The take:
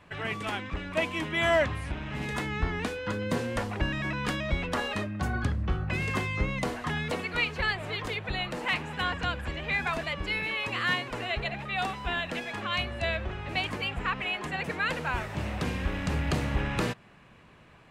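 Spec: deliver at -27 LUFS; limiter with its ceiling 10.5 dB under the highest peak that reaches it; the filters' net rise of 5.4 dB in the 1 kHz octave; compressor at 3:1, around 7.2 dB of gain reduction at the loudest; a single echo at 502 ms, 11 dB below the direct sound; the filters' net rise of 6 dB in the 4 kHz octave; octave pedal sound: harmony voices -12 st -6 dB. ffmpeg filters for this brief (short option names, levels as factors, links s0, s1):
-filter_complex "[0:a]equalizer=f=1000:t=o:g=6.5,equalizer=f=4000:t=o:g=8,acompressor=threshold=0.0398:ratio=3,alimiter=level_in=1.19:limit=0.0631:level=0:latency=1,volume=0.841,aecho=1:1:502:0.282,asplit=2[s0][s1];[s1]asetrate=22050,aresample=44100,atempo=2,volume=0.501[s2];[s0][s2]amix=inputs=2:normalize=0,volume=2.11"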